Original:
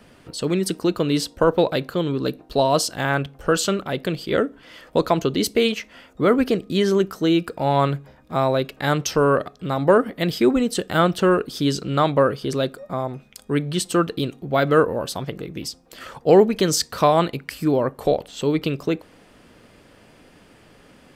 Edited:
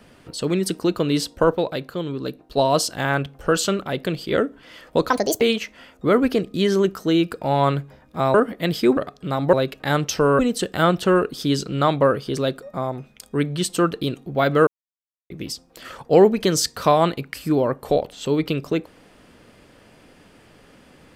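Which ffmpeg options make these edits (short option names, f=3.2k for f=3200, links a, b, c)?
-filter_complex "[0:a]asplit=11[a][b][c][d][e][f][g][h][i][j][k];[a]atrim=end=1.552[l];[b]atrim=start=1.548:end=2.572,asetpts=PTS-STARTPTS,volume=-4.5dB[m];[c]atrim=start=2.568:end=5.104[n];[d]atrim=start=5.1:end=5.57,asetpts=PTS-STARTPTS,asetrate=66591,aresample=44100,atrim=end_sample=13726,asetpts=PTS-STARTPTS[o];[e]atrim=start=5.566:end=8.502[p];[f]atrim=start=9.918:end=10.552[q];[g]atrim=start=9.358:end=9.922[r];[h]atrim=start=8.498:end=9.362[s];[i]atrim=start=10.548:end=14.83,asetpts=PTS-STARTPTS,afade=t=out:st=4.278:d=0.004:c=hsin[t];[j]atrim=start=14.83:end=15.46,asetpts=PTS-STARTPTS,volume=0[u];[k]atrim=start=15.46,asetpts=PTS-STARTPTS,afade=t=in:d=0.004:c=hsin[v];[l][m]acrossfade=d=0.004:c1=hsin:c2=hsin[w];[w][n]acrossfade=d=0.004:c1=hsin:c2=hsin[x];[x][o]acrossfade=d=0.004:c1=hsin:c2=hsin[y];[y][p]acrossfade=d=0.004:c1=hsin:c2=hsin[z];[z][q]acrossfade=d=0.004:c1=hsin:c2=hsin[aa];[aa][r]acrossfade=d=0.004:c1=hsin:c2=hsin[ab];[ab][s]acrossfade=d=0.004:c1=hsin:c2=hsin[ac];[t][u][v]concat=n=3:v=0:a=1[ad];[ac][ad]acrossfade=d=0.004:c1=hsin:c2=hsin"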